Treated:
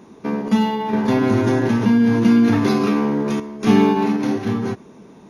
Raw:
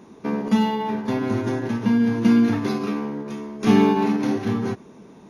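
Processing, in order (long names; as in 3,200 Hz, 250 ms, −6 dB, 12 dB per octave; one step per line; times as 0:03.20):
0:00.93–0:03.40: envelope flattener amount 50%
level +2 dB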